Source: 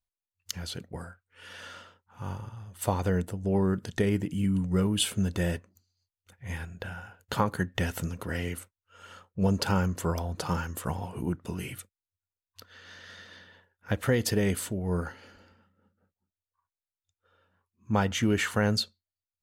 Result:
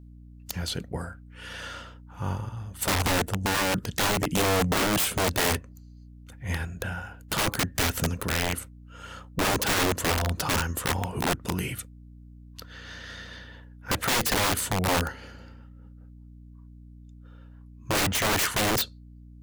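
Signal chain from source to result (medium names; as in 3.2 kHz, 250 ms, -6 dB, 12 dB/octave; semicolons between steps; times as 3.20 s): integer overflow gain 25 dB; hum 60 Hz, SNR 18 dB; trim +6 dB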